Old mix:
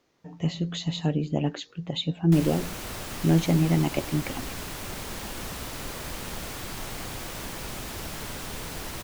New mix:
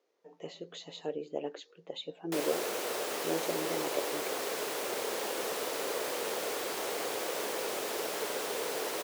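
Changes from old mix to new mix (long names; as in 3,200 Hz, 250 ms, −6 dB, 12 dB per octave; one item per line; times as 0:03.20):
speech −11.5 dB
master: add high-pass with resonance 450 Hz, resonance Q 3.4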